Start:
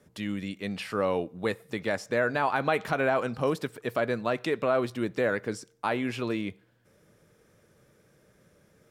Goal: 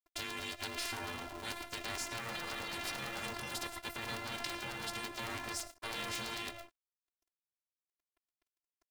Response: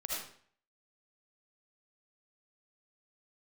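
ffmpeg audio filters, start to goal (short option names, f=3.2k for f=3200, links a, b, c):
-filter_complex "[0:a]asplit=2[a][b];[1:a]atrim=start_sample=2205,highshelf=f=10k:g=5,adelay=23[c];[b][c]afir=irnorm=-1:irlink=0,volume=-15.5dB[d];[a][d]amix=inputs=2:normalize=0,aeval=exprs='sgn(val(0))*max(abs(val(0))-0.00266,0)':c=same,alimiter=limit=-22dB:level=0:latency=1:release=18,afftfilt=real='hypot(re,im)*cos(PI*b)':imag='0':win_size=512:overlap=0.75,afftfilt=real='re*lt(hypot(re,im),0.0224)':imag='im*lt(hypot(re,im),0.0224)':win_size=1024:overlap=0.75,aeval=exprs='val(0)*sgn(sin(2*PI*340*n/s))':c=same,volume=9.5dB"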